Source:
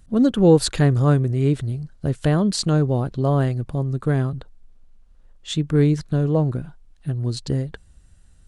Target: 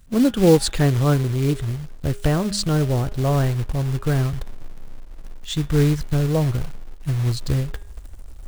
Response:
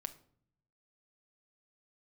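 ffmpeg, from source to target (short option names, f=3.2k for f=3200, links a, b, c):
-af "asubboost=boost=6.5:cutoff=78,acrusher=bits=4:mode=log:mix=0:aa=0.000001,bandreject=f=203.9:t=h:w=4,bandreject=f=407.8:t=h:w=4,bandreject=f=611.7:t=h:w=4,bandreject=f=815.6:t=h:w=4,bandreject=f=1.0195k:t=h:w=4,bandreject=f=1.2234k:t=h:w=4,bandreject=f=1.4273k:t=h:w=4,bandreject=f=1.6312k:t=h:w=4,bandreject=f=1.8351k:t=h:w=4,bandreject=f=2.039k:t=h:w=4,bandreject=f=2.2429k:t=h:w=4,bandreject=f=2.4468k:t=h:w=4,bandreject=f=2.6507k:t=h:w=4,bandreject=f=2.8546k:t=h:w=4,bandreject=f=3.0585k:t=h:w=4,bandreject=f=3.2624k:t=h:w=4,bandreject=f=3.4663k:t=h:w=4,bandreject=f=3.6702k:t=h:w=4"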